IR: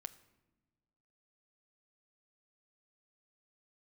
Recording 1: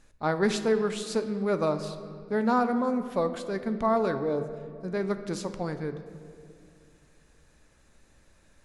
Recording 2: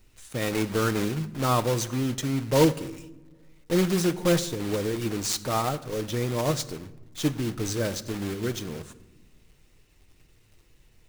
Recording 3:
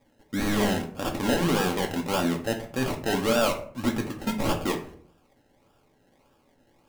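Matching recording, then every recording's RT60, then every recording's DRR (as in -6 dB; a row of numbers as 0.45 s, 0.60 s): 2; 2.3 s, no single decay rate, 0.55 s; 8.5 dB, 9.5 dB, 2.0 dB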